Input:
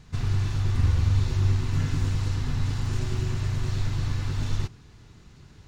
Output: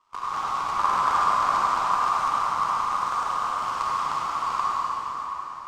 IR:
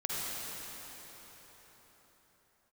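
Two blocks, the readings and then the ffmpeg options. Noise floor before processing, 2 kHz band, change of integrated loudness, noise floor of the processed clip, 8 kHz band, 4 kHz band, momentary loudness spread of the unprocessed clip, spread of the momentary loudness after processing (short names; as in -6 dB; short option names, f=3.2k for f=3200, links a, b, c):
-52 dBFS, +7.5 dB, +2.5 dB, -37 dBFS, n/a, +2.0 dB, 6 LU, 8 LU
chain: -filter_complex "[0:a]aeval=exprs='0.282*(cos(1*acos(clip(val(0)/0.282,-1,1)))-cos(1*PI/2))+0.112*(cos(2*acos(clip(val(0)/0.282,-1,1)))-cos(2*PI/2))+0.0316*(cos(3*acos(clip(val(0)/0.282,-1,1)))-cos(3*PI/2))+0.0178*(cos(7*acos(clip(val(0)/0.282,-1,1)))-cos(7*PI/2))+0.0316*(cos(8*acos(clip(val(0)/0.282,-1,1)))-cos(8*PI/2))':c=same,aeval=exprs='val(0)*sin(2*PI*1100*n/s)':c=same[a];[1:a]atrim=start_sample=2205[b];[a][b]afir=irnorm=-1:irlink=0"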